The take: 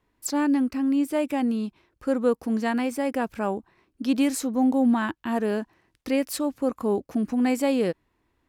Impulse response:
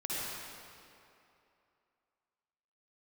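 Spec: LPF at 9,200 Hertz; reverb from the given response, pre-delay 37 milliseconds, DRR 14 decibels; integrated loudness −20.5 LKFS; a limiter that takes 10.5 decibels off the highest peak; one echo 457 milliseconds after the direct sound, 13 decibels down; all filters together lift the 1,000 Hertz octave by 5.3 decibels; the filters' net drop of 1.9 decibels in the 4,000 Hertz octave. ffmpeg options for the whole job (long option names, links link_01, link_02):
-filter_complex "[0:a]lowpass=9200,equalizer=frequency=1000:width_type=o:gain=7,equalizer=frequency=4000:width_type=o:gain=-3,alimiter=limit=-21dB:level=0:latency=1,aecho=1:1:457:0.224,asplit=2[link_01][link_02];[1:a]atrim=start_sample=2205,adelay=37[link_03];[link_02][link_03]afir=irnorm=-1:irlink=0,volume=-19dB[link_04];[link_01][link_04]amix=inputs=2:normalize=0,volume=9dB"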